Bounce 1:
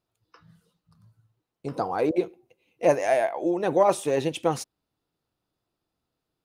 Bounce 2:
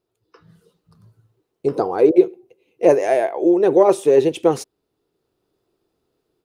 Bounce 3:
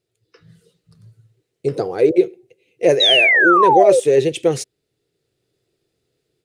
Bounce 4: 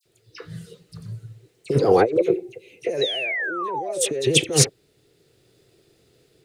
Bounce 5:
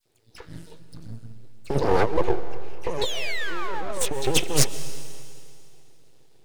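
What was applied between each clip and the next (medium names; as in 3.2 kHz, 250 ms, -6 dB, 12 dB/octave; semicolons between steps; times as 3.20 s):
peaking EQ 400 Hz +14 dB 0.66 oct; level rider gain up to 6 dB
graphic EQ 125/250/500/1000/2000/4000/8000 Hz +10/-3/+5/-10/+9/+5/+9 dB; painted sound fall, 3.00–4.00 s, 480–4000 Hz -10 dBFS; trim -3 dB
compressor with a negative ratio -25 dBFS, ratio -1; phase dispersion lows, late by 57 ms, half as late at 2.2 kHz; trim +2.5 dB
half-wave rectifier; algorithmic reverb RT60 2.4 s, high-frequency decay 1×, pre-delay 90 ms, DRR 13 dB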